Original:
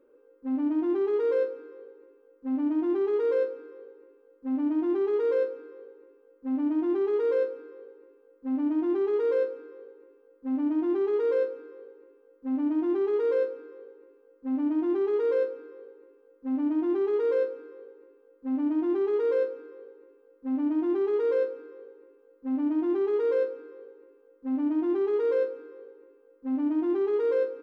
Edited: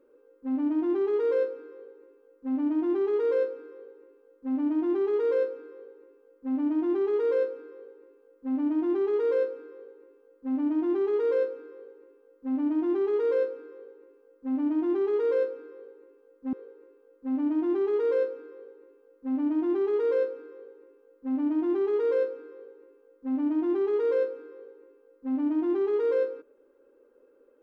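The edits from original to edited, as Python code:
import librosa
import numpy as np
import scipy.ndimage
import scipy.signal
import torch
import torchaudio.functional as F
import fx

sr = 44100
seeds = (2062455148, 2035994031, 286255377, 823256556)

y = fx.edit(x, sr, fx.cut(start_s=16.53, length_s=1.2), tone=tone)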